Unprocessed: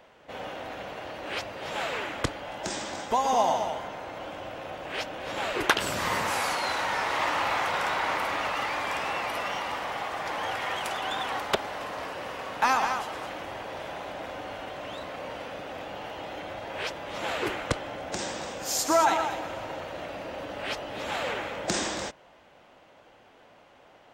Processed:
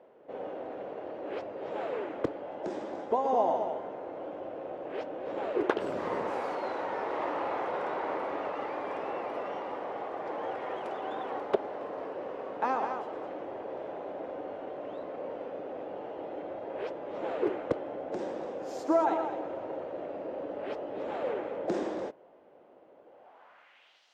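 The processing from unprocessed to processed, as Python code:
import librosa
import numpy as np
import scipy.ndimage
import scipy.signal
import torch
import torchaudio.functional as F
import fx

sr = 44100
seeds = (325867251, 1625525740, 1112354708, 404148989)

y = fx.filter_sweep_bandpass(x, sr, from_hz=410.0, to_hz=5200.0, start_s=23.06, end_s=24.07, q=1.8)
y = y * librosa.db_to_amplitude(4.5)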